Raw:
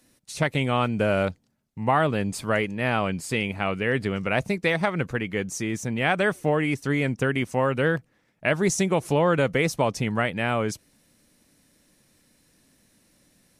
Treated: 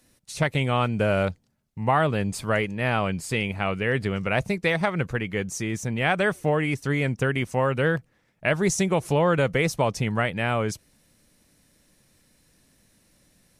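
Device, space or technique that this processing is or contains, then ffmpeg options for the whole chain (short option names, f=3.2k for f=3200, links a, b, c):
low shelf boost with a cut just above: -af "lowshelf=f=100:g=6,equalizer=f=270:t=o:w=0.66:g=-3.5"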